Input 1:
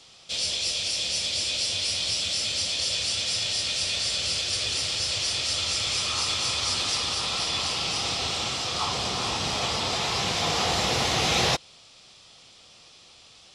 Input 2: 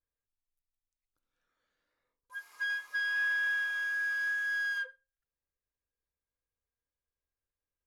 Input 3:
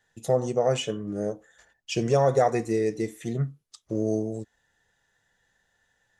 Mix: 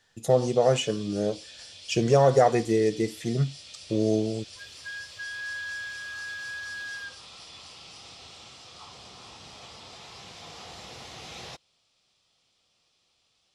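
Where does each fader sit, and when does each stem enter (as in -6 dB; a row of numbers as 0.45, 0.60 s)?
-19.0, -5.0, +2.0 dB; 0.00, 2.25, 0.00 s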